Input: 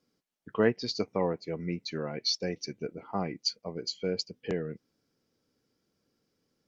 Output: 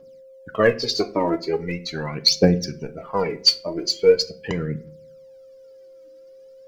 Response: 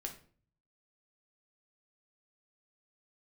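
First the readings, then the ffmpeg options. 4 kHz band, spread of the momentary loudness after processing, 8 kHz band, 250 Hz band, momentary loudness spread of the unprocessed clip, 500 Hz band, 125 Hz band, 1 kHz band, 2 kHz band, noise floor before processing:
+12.5 dB, 12 LU, can't be measured, +9.0 dB, 10 LU, +11.5 dB, +11.0 dB, +10.0 dB, +11.0 dB, −79 dBFS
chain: -filter_complex "[0:a]aphaser=in_gain=1:out_gain=1:delay=3.3:decay=0.8:speed=0.41:type=triangular,aeval=exprs='val(0)+0.00282*sin(2*PI*530*n/s)':channel_layout=same,asplit=2[link_01][link_02];[1:a]atrim=start_sample=2205[link_03];[link_02][link_03]afir=irnorm=-1:irlink=0,volume=-1.5dB[link_04];[link_01][link_04]amix=inputs=2:normalize=0,volume=3dB"

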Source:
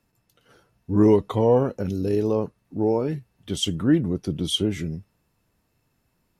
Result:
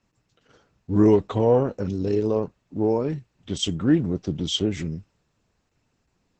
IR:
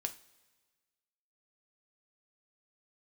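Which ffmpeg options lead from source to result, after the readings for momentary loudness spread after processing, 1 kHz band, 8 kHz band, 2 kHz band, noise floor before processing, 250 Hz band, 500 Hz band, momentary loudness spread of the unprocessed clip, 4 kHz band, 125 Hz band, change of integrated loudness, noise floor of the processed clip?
14 LU, −1.0 dB, −1.0 dB, −0.5 dB, −71 dBFS, 0.0 dB, 0.0 dB, 14 LU, −1.0 dB, −0.5 dB, 0.0 dB, −73 dBFS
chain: -ar 48000 -c:a libopus -b:a 10k

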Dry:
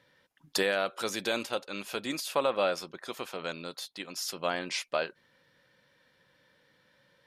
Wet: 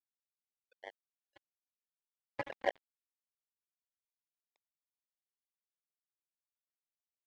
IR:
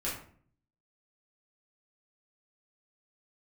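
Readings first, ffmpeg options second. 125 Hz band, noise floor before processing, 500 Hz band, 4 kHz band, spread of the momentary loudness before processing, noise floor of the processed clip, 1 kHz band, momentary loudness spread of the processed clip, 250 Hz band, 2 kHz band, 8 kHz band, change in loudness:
−16.0 dB, −68 dBFS, −14.5 dB, −23.5 dB, 11 LU, below −85 dBFS, −12.5 dB, 17 LU, −20.0 dB, −14.5 dB, below −30 dB, −7.5 dB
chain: -filter_complex "[0:a]asplit=2[link_01][link_02];[link_02]asoftclip=type=hard:threshold=-28.5dB,volume=-8dB[link_03];[link_01][link_03]amix=inputs=2:normalize=0,bandpass=frequency=780:width_type=q:width=5.5:csg=0,aecho=1:1:88|176|264|352|440|528:0.224|0.132|0.0779|0.046|0.0271|0.016[link_04];[1:a]atrim=start_sample=2205[link_05];[link_04][link_05]afir=irnorm=-1:irlink=0,afftfilt=real='re*gte(hypot(re,im),0.1)':imag='im*gte(hypot(re,im),0.1)':win_size=1024:overlap=0.75,acrusher=bits=3:mix=0:aa=0.5,volume=-1dB"

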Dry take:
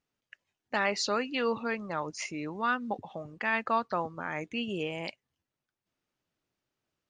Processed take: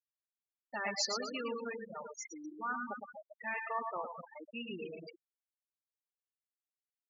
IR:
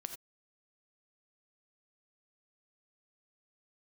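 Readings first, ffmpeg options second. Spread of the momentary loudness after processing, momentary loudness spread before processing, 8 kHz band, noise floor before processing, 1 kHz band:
12 LU, 8 LU, −1.0 dB, below −85 dBFS, −8.5 dB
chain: -filter_complex "[0:a]flanger=delay=2.2:depth=5.9:regen=-74:speed=0.37:shape=triangular,bass=frequency=250:gain=-2,treble=frequency=4000:gain=12,asplit=2[link_01][link_02];[link_02]aecho=0:1:110|242|400.4|590.5|818.6:0.631|0.398|0.251|0.158|0.1[link_03];[link_01][link_03]amix=inputs=2:normalize=0,afftfilt=real='re*gte(hypot(re,im),0.0631)':imag='im*gte(hypot(re,im),0.0631)':win_size=1024:overlap=0.75,volume=-4.5dB"

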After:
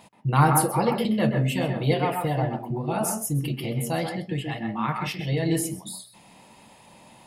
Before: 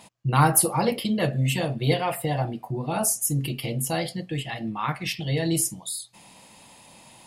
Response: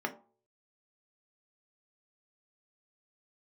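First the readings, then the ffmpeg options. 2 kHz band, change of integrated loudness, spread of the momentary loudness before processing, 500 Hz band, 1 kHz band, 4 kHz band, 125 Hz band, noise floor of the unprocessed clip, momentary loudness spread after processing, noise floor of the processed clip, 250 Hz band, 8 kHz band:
−0.5 dB, 0.0 dB, 12 LU, +1.0 dB, +1.0 dB, −3.5 dB, +0.5 dB, −52 dBFS, 10 LU, −53 dBFS, +1.5 dB, −6.0 dB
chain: -filter_complex "[0:a]equalizer=frequency=8000:width_type=o:width=2.5:gain=-6.5,asplit=2[link_01][link_02];[1:a]atrim=start_sample=2205,atrim=end_sample=3969,adelay=128[link_03];[link_02][link_03]afir=irnorm=-1:irlink=0,volume=-9.5dB[link_04];[link_01][link_04]amix=inputs=2:normalize=0"

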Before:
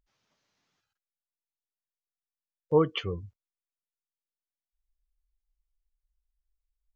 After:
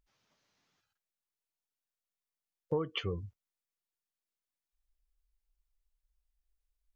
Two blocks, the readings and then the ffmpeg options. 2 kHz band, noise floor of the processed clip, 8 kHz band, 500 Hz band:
−3.5 dB, below −85 dBFS, can't be measured, −9.5 dB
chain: -af "acompressor=threshold=-29dB:ratio=10"

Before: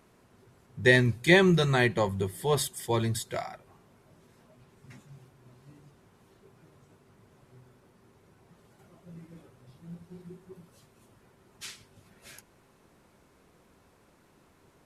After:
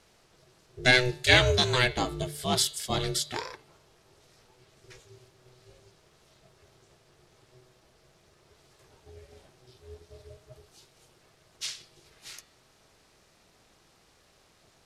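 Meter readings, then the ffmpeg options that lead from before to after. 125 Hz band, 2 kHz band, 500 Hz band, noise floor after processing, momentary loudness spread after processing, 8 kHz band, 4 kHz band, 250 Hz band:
−3.5 dB, +1.5 dB, −3.0 dB, −63 dBFS, 17 LU, +5.0 dB, +7.5 dB, −6.5 dB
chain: -af "equalizer=frequency=4700:width_type=o:width=1.9:gain=13,aeval=exprs='val(0)*sin(2*PI*250*n/s)':channel_layout=same,bandreject=frequency=147.3:width_type=h:width=4,bandreject=frequency=294.6:width_type=h:width=4,bandreject=frequency=441.9:width_type=h:width=4,bandreject=frequency=589.2:width_type=h:width=4,bandreject=frequency=736.5:width_type=h:width=4,bandreject=frequency=883.8:width_type=h:width=4,bandreject=frequency=1031.1:width_type=h:width=4,bandreject=frequency=1178.4:width_type=h:width=4,bandreject=frequency=1325.7:width_type=h:width=4,bandreject=frequency=1473:width_type=h:width=4,bandreject=frequency=1620.3:width_type=h:width=4,bandreject=frequency=1767.6:width_type=h:width=4,bandreject=frequency=1914.9:width_type=h:width=4,bandreject=frequency=2062.2:width_type=h:width=4,bandreject=frequency=2209.5:width_type=h:width=4,bandreject=frequency=2356.8:width_type=h:width=4,bandreject=frequency=2504.1:width_type=h:width=4,bandreject=frequency=2651.4:width_type=h:width=4,bandreject=frequency=2798.7:width_type=h:width=4,bandreject=frequency=2946:width_type=h:width=4,bandreject=frequency=3093.3:width_type=h:width=4,bandreject=frequency=3240.6:width_type=h:width=4,bandreject=frequency=3387.9:width_type=h:width=4,bandreject=frequency=3535.2:width_type=h:width=4,bandreject=frequency=3682.5:width_type=h:width=4,bandreject=frequency=3829.8:width_type=h:width=4,bandreject=frequency=3977.1:width_type=h:width=4,bandreject=frequency=4124.4:width_type=h:width=4,bandreject=frequency=4271.7:width_type=h:width=4,bandreject=frequency=4419:width_type=h:width=4,bandreject=frequency=4566.3:width_type=h:width=4,bandreject=frequency=4713.6:width_type=h:width=4,bandreject=frequency=4860.9:width_type=h:width=4"

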